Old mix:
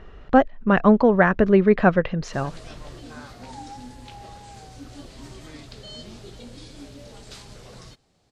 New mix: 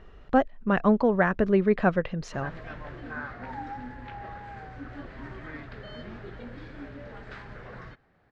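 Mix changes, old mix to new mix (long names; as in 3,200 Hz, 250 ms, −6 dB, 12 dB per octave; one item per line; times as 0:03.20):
speech −6.0 dB
background: add low-pass with resonance 1,700 Hz, resonance Q 3.3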